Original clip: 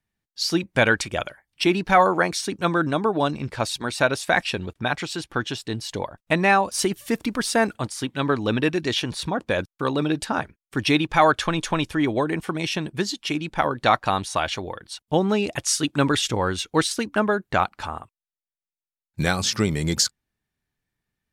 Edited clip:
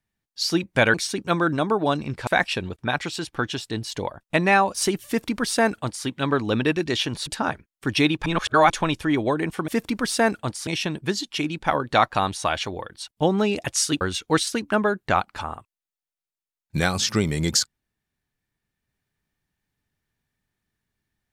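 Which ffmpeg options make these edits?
-filter_complex "[0:a]asplit=9[a][b][c][d][e][f][g][h][i];[a]atrim=end=0.942[j];[b]atrim=start=2.278:end=3.612[k];[c]atrim=start=4.238:end=9.242[l];[d]atrim=start=10.168:end=11.162[m];[e]atrim=start=11.158:end=11.602,asetpts=PTS-STARTPTS,areverse[n];[f]atrim=start=11.598:end=12.582[o];[g]atrim=start=7.038:end=8.032[p];[h]atrim=start=12.578:end=15.922[q];[i]atrim=start=16.448[r];[j][k]acrossfade=d=0.004:c1=hsin:c2=hsin[s];[s][l]acrossfade=d=0.004:c1=hsin:c2=hsin[t];[t][m]acrossfade=d=0.004:c1=hsin:c2=hsin[u];[u][n]acrossfade=d=0.004:c1=hsin:c2=hsin[v];[v][o]acrossfade=d=0.004:c1=hsin:c2=hsin[w];[w][p]acrossfade=d=0.004:c1=hsin:c2=hsin[x];[x][q]acrossfade=d=0.004:c1=hsin:c2=hsin[y];[y][r]acrossfade=d=0.004:c1=hsin:c2=hsin"

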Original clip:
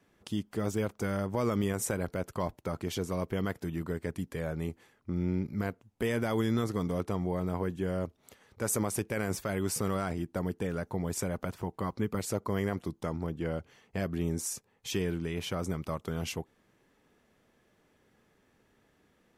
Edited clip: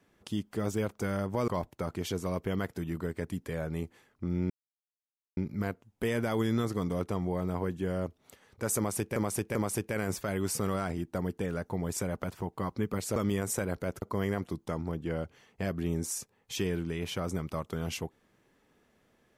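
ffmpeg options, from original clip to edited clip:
-filter_complex "[0:a]asplit=7[a][b][c][d][e][f][g];[a]atrim=end=1.482[h];[b]atrim=start=2.338:end=5.36,asetpts=PTS-STARTPTS,afade=t=out:st=3.018:d=0.004:c=hsin,apad=pad_dur=0.87[i];[c]atrim=start=5.36:end=9.152,asetpts=PTS-STARTPTS,afade=t=in:d=0.004:c=hsin[j];[d]atrim=start=8.758:end=9.152[k];[e]atrim=start=8.758:end=12.372[l];[f]atrim=start=1.478:end=2.342[m];[g]atrim=start=12.368[n];[i][j]concat=n=2:v=0:a=1[o];[h][o]acrossfade=d=0.004:c1=hsin:c2=hsin[p];[p][k]acrossfade=d=0.004:c1=hsin:c2=hsin[q];[q][l]acrossfade=d=0.004:c1=hsin:c2=hsin[r];[r][m]acrossfade=d=0.004:c1=hsin:c2=hsin[s];[s][n]acrossfade=d=0.004:c1=hsin:c2=hsin"

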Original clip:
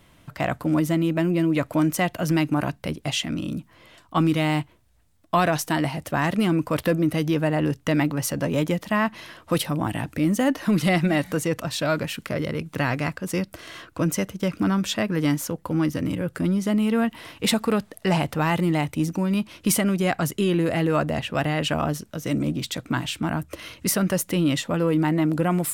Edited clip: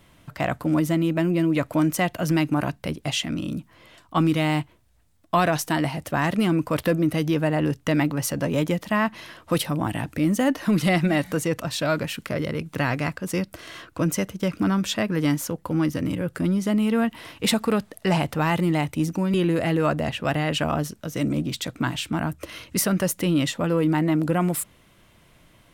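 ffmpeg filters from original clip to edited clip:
-filter_complex "[0:a]asplit=2[a][b];[a]atrim=end=19.342[c];[b]atrim=start=20.438[d];[c][d]acrossfade=d=0.004:c1=hsin:c2=hsin"

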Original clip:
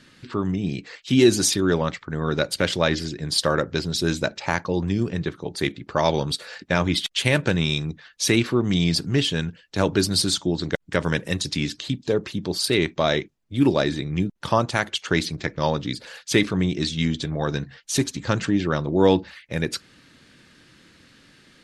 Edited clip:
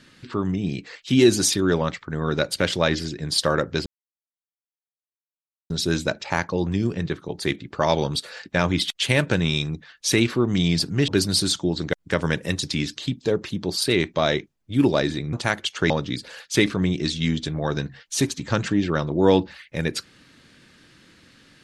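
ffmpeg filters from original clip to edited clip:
-filter_complex "[0:a]asplit=5[a][b][c][d][e];[a]atrim=end=3.86,asetpts=PTS-STARTPTS,afade=t=out:st=3.856:d=0.004:c=hsin,apad=pad_dur=1.84[f];[b]atrim=start=3.86:end=9.242,asetpts=PTS-STARTPTS,afade=t=in:d=0.004:c=hsin[g];[c]atrim=start=9.898:end=14.152[h];[d]atrim=start=14.618:end=15.192[i];[e]atrim=start=15.668[j];[f][g]concat=n=2:v=0:a=1[k];[k][h]acrossfade=d=0.004:c1=hsin:c2=hsin[l];[l][i]acrossfade=d=0.004:c1=hsin:c2=hsin[m];[m][j]acrossfade=d=0.004:c1=hsin:c2=hsin"

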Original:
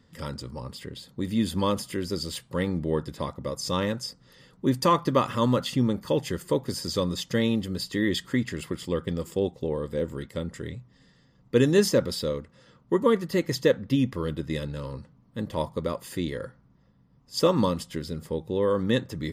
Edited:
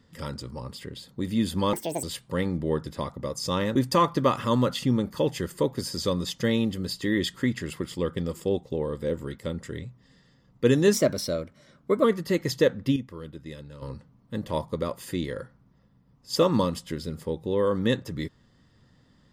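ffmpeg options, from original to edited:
-filter_complex "[0:a]asplit=8[a][b][c][d][e][f][g][h];[a]atrim=end=1.734[i];[b]atrim=start=1.73:end=2.25,asetpts=PTS-STARTPTS,asetrate=75411,aresample=44100[j];[c]atrim=start=2.246:end=3.972[k];[d]atrim=start=4.658:end=11.844[l];[e]atrim=start=11.84:end=13.08,asetpts=PTS-STARTPTS,asetrate=49392,aresample=44100[m];[f]atrim=start=13.076:end=14.002[n];[g]atrim=start=13.998:end=14.862,asetpts=PTS-STARTPTS,volume=-10dB[o];[h]atrim=start=14.858[p];[i][j]acrossfade=d=0.004:c1=hsin:c2=hsin[q];[q][k]acrossfade=d=0.004:c1=hsin:c2=hsin[r];[r][l]acrossfade=d=0.004:c1=hsin:c2=hsin[s];[s][m]acrossfade=d=0.004:c1=hsin:c2=hsin[t];[t][n]acrossfade=d=0.004:c1=hsin:c2=hsin[u];[u][o]acrossfade=d=0.004:c1=hsin:c2=hsin[v];[v][p]acrossfade=d=0.004:c1=hsin:c2=hsin"

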